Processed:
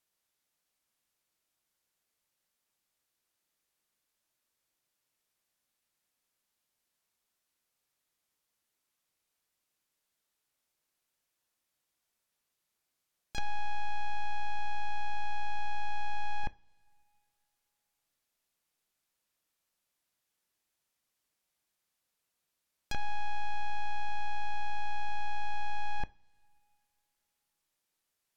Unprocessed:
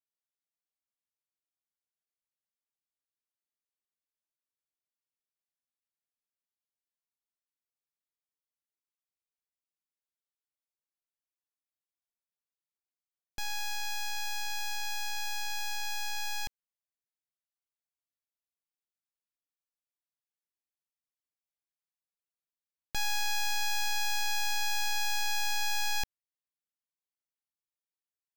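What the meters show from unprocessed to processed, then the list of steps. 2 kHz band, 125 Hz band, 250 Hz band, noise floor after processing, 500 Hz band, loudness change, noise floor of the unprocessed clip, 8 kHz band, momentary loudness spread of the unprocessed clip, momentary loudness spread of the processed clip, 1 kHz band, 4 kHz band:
-6.5 dB, +6.0 dB, +4.5 dB, -84 dBFS, +3.5 dB, -6.5 dB, under -85 dBFS, -21.5 dB, 6 LU, 2 LU, +2.0 dB, -14.0 dB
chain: pre-echo 34 ms -14 dB; peak limiter -37.5 dBFS, peak gain reduction 11 dB; low-pass that closes with the level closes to 1.3 kHz, closed at -39.5 dBFS; two-slope reverb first 0.29 s, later 2.6 s, from -22 dB, DRR 15 dB; trim +12.5 dB

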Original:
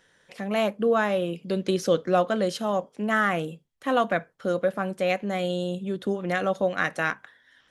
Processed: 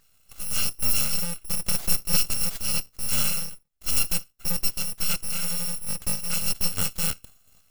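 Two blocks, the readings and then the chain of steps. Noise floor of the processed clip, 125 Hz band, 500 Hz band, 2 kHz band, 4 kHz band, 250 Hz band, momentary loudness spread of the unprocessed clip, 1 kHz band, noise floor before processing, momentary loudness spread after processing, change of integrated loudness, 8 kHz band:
-62 dBFS, -1.5 dB, -20.5 dB, -8.0 dB, +7.5 dB, -10.5 dB, 6 LU, -14.0 dB, -64 dBFS, 6 LU, +0.5 dB, +19.5 dB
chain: bit-reversed sample order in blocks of 128 samples; full-wave rectifier; trim +2 dB

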